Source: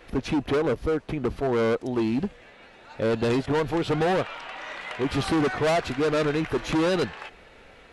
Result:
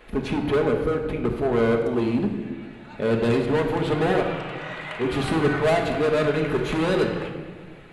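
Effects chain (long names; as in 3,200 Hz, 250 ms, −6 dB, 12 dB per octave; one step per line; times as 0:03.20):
parametric band 5,500 Hz −9 dB 0.53 octaves
rectangular room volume 1,500 cubic metres, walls mixed, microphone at 1.4 metres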